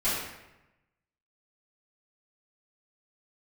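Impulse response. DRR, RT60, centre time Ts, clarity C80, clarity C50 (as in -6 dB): -15.0 dB, 0.95 s, 74 ms, 3.0 dB, 0.0 dB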